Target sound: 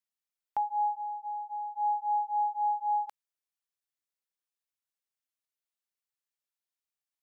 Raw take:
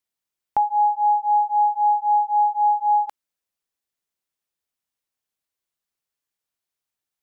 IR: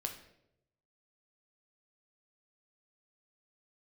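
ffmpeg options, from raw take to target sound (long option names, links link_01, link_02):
-filter_complex "[0:a]lowshelf=frequency=470:gain=-10,asplit=3[link_01][link_02][link_03];[link_01]afade=type=out:start_time=0.97:duration=0.02[link_04];[link_02]acompressor=threshold=-27dB:ratio=6,afade=type=in:start_time=0.97:duration=0.02,afade=type=out:start_time=1.76:duration=0.02[link_05];[link_03]afade=type=in:start_time=1.76:duration=0.02[link_06];[link_04][link_05][link_06]amix=inputs=3:normalize=0,volume=-8dB"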